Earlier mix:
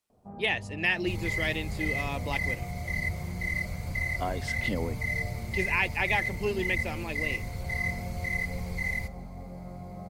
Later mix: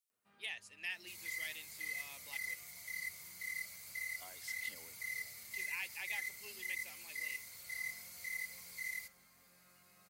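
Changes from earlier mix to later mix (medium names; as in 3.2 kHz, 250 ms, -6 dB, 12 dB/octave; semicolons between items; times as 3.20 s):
speech -5.5 dB; first sound: remove resonant low-pass 760 Hz, resonance Q 3.5; master: add differentiator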